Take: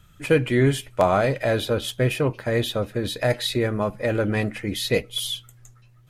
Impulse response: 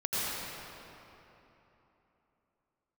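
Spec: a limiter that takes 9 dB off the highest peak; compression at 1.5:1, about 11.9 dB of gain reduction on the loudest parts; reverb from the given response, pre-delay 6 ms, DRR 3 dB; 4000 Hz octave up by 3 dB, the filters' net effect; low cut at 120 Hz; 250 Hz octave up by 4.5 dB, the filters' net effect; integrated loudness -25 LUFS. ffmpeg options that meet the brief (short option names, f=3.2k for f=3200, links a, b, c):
-filter_complex "[0:a]highpass=120,equalizer=f=250:t=o:g=6,equalizer=f=4k:t=o:g=3.5,acompressor=threshold=-46dB:ratio=1.5,alimiter=level_in=0.5dB:limit=-24dB:level=0:latency=1,volume=-0.5dB,asplit=2[a][b];[1:a]atrim=start_sample=2205,adelay=6[c];[b][c]afir=irnorm=-1:irlink=0,volume=-12dB[d];[a][d]amix=inputs=2:normalize=0,volume=8.5dB"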